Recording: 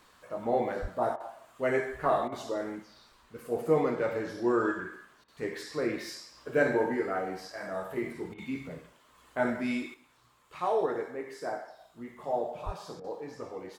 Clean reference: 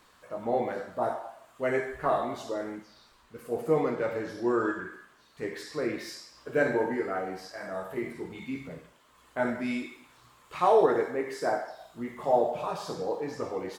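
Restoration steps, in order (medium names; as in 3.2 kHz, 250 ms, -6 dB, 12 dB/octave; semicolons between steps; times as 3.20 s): 0.81–0.93 s: high-pass 140 Hz 24 dB/octave; 12.65–12.77 s: high-pass 140 Hz 24 dB/octave; interpolate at 1.16/2.28/5.24/8.34/13.00 s, 40 ms; trim 0 dB, from 9.94 s +7 dB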